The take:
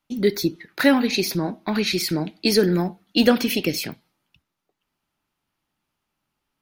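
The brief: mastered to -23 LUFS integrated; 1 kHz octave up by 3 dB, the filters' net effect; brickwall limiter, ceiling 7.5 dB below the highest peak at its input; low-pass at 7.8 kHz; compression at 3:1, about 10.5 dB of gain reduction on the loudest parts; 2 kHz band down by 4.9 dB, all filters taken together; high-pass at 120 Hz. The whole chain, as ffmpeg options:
-af "highpass=120,lowpass=7800,equalizer=f=1000:t=o:g=6,equalizer=f=2000:t=o:g=-8.5,acompressor=threshold=0.0501:ratio=3,volume=2.51,alimiter=limit=0.251:level=0:latency=1"

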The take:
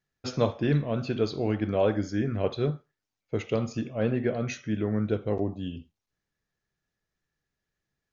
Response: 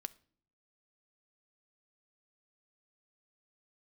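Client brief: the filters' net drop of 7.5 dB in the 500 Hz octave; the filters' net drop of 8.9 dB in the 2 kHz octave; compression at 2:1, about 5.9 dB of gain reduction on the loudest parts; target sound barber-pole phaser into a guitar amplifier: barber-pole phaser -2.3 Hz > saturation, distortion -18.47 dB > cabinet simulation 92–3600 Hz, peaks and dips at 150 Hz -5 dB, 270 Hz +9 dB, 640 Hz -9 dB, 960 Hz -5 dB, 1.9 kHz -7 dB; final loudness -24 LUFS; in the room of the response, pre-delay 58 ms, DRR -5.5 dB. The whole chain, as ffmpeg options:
-filter_complex "[0:a]equalizer=f=500:t=o:g=-7.5,equalizer=f=2000:t=o:g=-8,acompressor=threshold=0.0251:ratio=2,asplit=2[s0][s1];[1:a]atrim=start_sample=2205,adelay=58[s2];[s1][s2]afir=irnorm=-1:irlink=0,volume=2.66[s3];[s0][s3]amix=inputs=2:normalize=0,asplit=2[s4][s5];[s5]afreqshift=-2.3[s6];[s4][s6]amix=inputs=2:normalize=1,asoftclip=threshold=0.0668,highpass=92,equalizer=f=150:t=q:w=4:g=-5,equalizer=f=270:t=q:w=4:g=9,equalizer=f=640:t=q:w=4:g=-9,equalizer=f=960:t=q:w=4:g=-5,equalizer=f=1900:t=q:w=4:g=-7,lowpass=f=3600:w=0.5412,lowpass=f=3600:w=1.3066,volume=2.82"

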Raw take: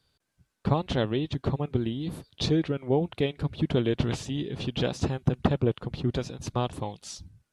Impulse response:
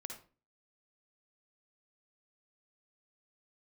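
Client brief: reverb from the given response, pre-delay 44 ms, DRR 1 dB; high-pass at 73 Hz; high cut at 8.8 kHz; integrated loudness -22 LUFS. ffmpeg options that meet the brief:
-filter_complex "[0:a]highpass=73,lowpass=8800,asplit=2[s0][s1];[1:a]atrim=start_sample=2205,adelay=44[s2];[s1][s2]afir=irnorm=-1:irlink=0,volume=1.33[s3];[s0][s3]amix=inputs=2:normalize=0,volume=1.68"

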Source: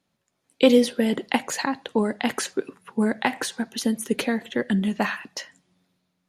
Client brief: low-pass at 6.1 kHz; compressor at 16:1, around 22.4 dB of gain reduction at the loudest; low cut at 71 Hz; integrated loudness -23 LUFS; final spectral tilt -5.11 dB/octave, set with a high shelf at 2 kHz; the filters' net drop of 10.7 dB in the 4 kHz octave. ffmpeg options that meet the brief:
-af "highpass=71,lowpass=6100,highshelf=f=2000:g=-7,equalizer=f=4000:t=o:g=-7,acompressor=threshold=0.02:ratio=16,volume=7.5"

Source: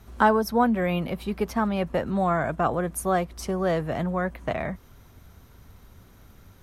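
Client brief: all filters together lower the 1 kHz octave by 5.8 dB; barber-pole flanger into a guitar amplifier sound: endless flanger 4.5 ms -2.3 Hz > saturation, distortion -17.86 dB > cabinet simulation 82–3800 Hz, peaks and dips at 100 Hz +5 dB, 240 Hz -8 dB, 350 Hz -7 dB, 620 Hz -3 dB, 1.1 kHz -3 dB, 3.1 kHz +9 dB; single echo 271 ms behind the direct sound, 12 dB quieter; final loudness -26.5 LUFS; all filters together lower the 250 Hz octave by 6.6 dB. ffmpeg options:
-filter_complex "[0:a]equalizer=f=250:t=o:g=-4,equalizer=f=1000:t=o:g=-5.5,aecho=1:1:271:0.251,asplit=2[s0][s1];[s1]adelay=4.5,afreqshift=-2.3[s2];[s0][s2]amix=inputs=2:normalize=1,asoftclip=threshold=0.106,highpass=82,equalizer=f=100:t=q:w=4:g=5,equalizer=f=240:t=q:w=4:g=-8,equalizer=f=350:t=q:w=4:g=-7,equalizer=f=620:t=q:w=4:g=-3,equalizer=f=1100:t=q:w=4:g=-3,equalizer=f=3100:t=q:w=4:g=9,lowpass=f=3800:w=0.5412,lowpass=f=3800:w=1.3066,volume=2.37"

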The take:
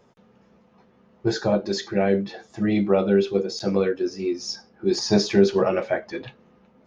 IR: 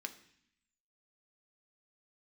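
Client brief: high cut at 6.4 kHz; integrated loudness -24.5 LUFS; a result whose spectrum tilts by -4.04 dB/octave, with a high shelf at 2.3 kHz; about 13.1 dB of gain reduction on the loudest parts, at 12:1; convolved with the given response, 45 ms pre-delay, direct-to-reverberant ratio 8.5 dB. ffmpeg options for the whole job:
-filter_complex "[0:a]lowpass=6400,highshelf=f=2300:g=8.5,acompressor=threshold=0.0562:ratio=12,asplit=2[s0][s1];[1:a]atrim=start_sample=2205,adelay=45[s2];[s1][s2]afir=irnorm=-1:irlink=0,volume=0.447[s3];[s0][s3]amix=inputs=2:normalize=0,volume=1.88"

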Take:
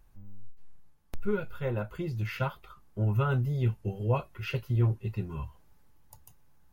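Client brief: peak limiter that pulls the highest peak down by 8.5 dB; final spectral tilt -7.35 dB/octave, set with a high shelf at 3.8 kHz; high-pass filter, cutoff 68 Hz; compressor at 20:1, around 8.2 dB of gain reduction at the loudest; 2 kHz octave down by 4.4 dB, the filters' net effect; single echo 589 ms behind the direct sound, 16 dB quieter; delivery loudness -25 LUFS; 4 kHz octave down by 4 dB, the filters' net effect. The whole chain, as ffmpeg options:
-af "highpass=68,equalizer=f=2000:t=o:g=-7,highshelf=f=3800:g=7.5,equalizer=f=4000:t=o:g=-7,acompressor=threshold=0.0355:ratio=20,alimiter=level_in=1.68:limit=0.0631:level=0:latency=1,volume=0.596,aecho=1:1:589:0.158,volume=4.73"

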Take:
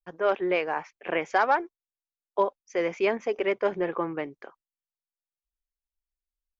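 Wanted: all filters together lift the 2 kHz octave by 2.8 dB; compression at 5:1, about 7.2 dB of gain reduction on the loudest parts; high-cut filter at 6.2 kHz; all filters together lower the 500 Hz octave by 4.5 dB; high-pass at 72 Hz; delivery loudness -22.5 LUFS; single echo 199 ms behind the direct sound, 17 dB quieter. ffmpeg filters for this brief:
-af "highpass=72,lowpass=6200,equalizer=f=500:t=o:g=-6,equalizer=f=2000:t=o:g=4,acompressor=threshold=0.0501:ratio=5,aecho=1:1:199:0.141,volume=3.35"

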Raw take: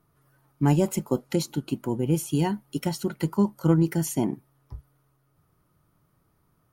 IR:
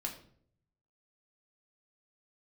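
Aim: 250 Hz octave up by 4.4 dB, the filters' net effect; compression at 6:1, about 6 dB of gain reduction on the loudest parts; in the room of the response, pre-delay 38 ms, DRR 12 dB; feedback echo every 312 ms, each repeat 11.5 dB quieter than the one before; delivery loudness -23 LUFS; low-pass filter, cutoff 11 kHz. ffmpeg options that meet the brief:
-filter_complex "[0:a]lowpass=11000,equalizer=f=250:t=o:g=6.5,acompressor=threshold=0.112:ratio=6,aecho=1:1:312|624|936:0.266|0.0718|0.0194,asplit=2[s0][s1];[1:a]atrim=start_sample=2205,adelay=38[s2];[s1][s2]afir=irnorm=-1:irlink=0,volume=0.237[s3];[s0][s3]amix=inputs=2:normalize=0,volume=1.41"

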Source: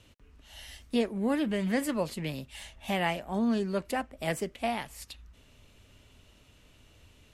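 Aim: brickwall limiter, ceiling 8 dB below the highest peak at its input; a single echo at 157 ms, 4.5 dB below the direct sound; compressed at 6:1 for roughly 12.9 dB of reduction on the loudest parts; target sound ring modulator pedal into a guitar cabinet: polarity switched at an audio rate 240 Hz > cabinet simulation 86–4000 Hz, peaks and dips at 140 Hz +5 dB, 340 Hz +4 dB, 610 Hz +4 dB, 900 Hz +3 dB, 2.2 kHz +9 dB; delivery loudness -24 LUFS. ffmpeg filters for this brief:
-af "acompressor=threshold=0.0126:ratio=6,alimiter=level_in=3.16:limit=0.0631:level=0:latency=1,volume=0.316,aecho=1:1:157:0.596,aeval=exprs='val(0)*sgn(sin(2*PI*240*n/s))':c=same,highpass=86,equalizer=f=140:t=q:w=4:g=5,equalizer=f=340:t=q:w=4:g=4,equalizer=f=610:t=q:w=4:g=4,equalizer=f=900:t=q:w=4:g=3,equalizer=f=2200:t=q:w=4:g=9,lowpass=f=4000:w=0.5412,lowpass=f=4000:w=1.3066,volume=7.5"

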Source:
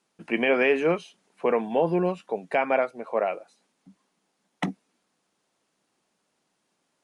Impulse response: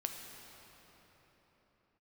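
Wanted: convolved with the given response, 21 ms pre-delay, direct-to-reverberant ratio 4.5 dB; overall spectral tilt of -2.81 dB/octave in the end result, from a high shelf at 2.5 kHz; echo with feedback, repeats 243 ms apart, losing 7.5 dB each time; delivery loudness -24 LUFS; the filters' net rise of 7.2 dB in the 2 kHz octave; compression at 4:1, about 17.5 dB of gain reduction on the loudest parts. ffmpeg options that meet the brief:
-filter_complex "[0:a]equalizer=f=2000:t=o:g=5,highshelf=f=2500:g=7.5,acompressor=threshold=0.0158:ratio=4,aecho=1:1:243|486|729|972|1215:0.422|0.177|0.0744|0.0312|0.0131,asplit=2[s0][s1];[1:a]atrim=start_sample=2205,adelay=21[s2];[s1][s2]afir=irnorm=-1:irlink=0,volume=0.562[s3];[s0][s3]amix=inputs=2:normalize=0,volume=4.22"

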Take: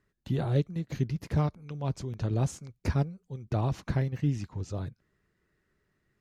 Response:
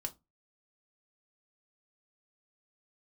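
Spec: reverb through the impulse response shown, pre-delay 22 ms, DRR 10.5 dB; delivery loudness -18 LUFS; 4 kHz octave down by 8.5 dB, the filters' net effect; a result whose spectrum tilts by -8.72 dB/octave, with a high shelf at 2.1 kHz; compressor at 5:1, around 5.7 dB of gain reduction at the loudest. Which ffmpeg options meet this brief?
-filter_complex "[0:a]highshelf=f=2100:g=-3.5,equalizer=f=4000:t=o:g=-7.5,acompressor=threshold=0.0398:ratio=5,asplit=2[s0][s1];[1:a]atrim=start_sample=2205,adelay=22[s2];[s1][s2]afir=irnorm=-1:irlink=0,volume=0.335[s3];[s0][s3]amix=inputs=2:normalize=0,volume=7.08"

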